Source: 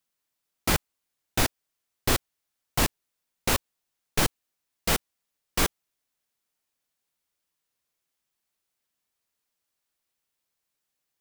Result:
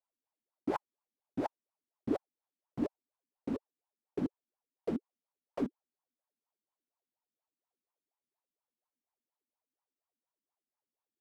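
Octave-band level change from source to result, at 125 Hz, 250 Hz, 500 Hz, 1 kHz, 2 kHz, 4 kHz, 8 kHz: -16.0 dB, -2.0 dB, -6.0 dB, -12.0 dB, -23.5 dB, under -30 dB, under -35 dB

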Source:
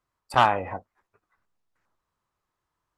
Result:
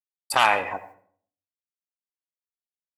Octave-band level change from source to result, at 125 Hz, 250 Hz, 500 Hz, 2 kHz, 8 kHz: -11.0 dB, -5.0 dB, -0.5 dB, +5.5 dB, no reading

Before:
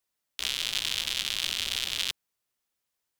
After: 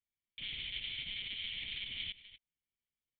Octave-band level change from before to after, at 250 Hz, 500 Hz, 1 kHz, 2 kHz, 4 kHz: -8.5 dB, under -15 dB, under -20 dB, -8.5 dB, -10.5 dB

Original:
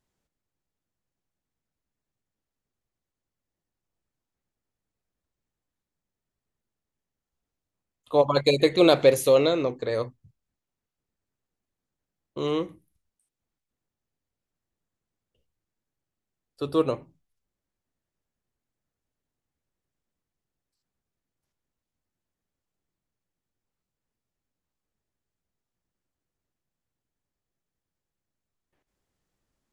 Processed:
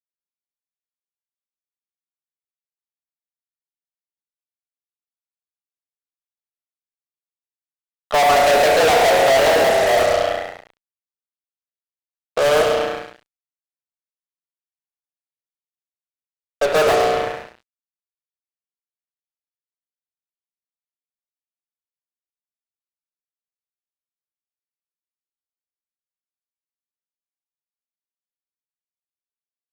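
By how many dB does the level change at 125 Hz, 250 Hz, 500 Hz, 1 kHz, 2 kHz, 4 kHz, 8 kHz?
-1.5 dB, -3.5 dB, +7.0 dB, +15.5 dB, +15.5 dB, +8.5 dB, +12.0 dB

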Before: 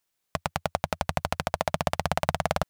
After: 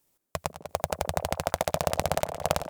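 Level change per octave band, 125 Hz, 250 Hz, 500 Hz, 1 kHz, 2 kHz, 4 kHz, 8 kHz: -2.5 dB, -3.0 dB, +1.0 dB, -2.0 dB, -3.5 dB, -1.0 dB, +4.0 dB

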